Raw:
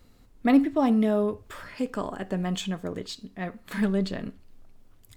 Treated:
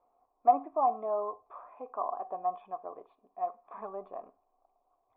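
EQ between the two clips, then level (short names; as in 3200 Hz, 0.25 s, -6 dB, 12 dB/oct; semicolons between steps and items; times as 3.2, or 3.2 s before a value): dynamic EQ 1200 Hz, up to +6 dB, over -50 dBFS, Q 3.6; vocal tract filter a; resonant low shelf 250 Hz -13 dB, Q 1.5; +7.0 dB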